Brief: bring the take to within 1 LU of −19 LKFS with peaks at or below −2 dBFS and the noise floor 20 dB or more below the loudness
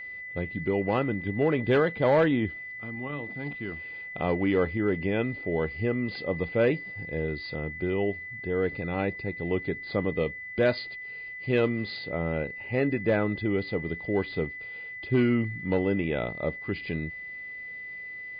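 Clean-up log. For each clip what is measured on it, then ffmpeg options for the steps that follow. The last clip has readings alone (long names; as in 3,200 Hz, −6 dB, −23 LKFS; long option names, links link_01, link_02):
interfering tone 2,000 Hz; level of the tone −37 dBFS; integrated loudness −29.0 LKFS; sample peak −14.5 dBFS; target loudness −19.0 LKFS
→ -af "bandreject=frequency=2000:width=30"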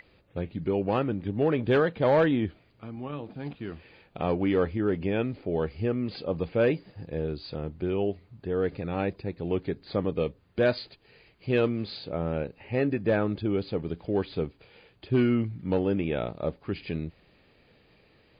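interfering tone none found; integrated loudness −29.0 LKFS; sample peak −15.0 dBFS; target loudness −19.0 LKFS
→ -af "volume=10dB"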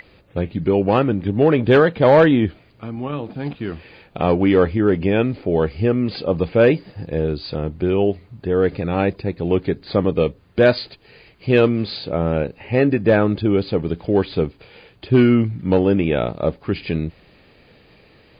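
integrated loudness −19.0 LKFS; sample peak −5.0 dBFS; background noise floor −52 dBFS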